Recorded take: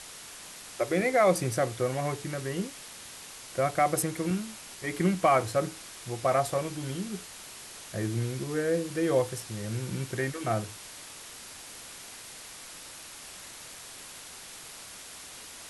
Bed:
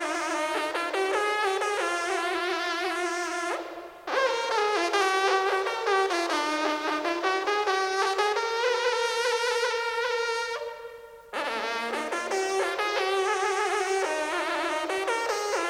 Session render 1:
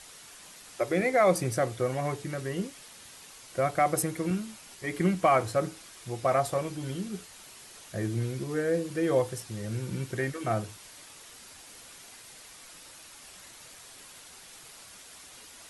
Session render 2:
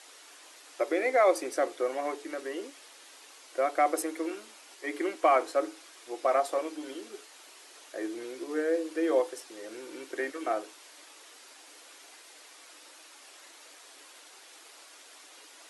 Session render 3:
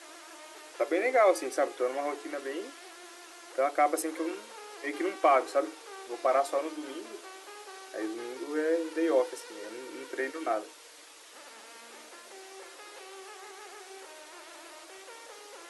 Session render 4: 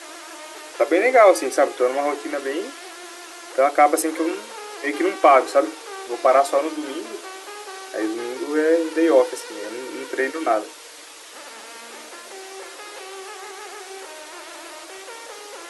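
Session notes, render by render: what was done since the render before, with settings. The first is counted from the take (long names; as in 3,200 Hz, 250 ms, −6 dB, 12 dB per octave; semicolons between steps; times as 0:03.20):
broadband denoise 6 dB, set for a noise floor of −46 dBFS
elliptic high-pass filter 290 Hz, stop band 40 dB; high-shelf EQ 10,000 Hz −10 dB
mix in bed −22 dB
level +10.5 dB; brickwall limiter −3 dBFS, peak gain reduction 1 dB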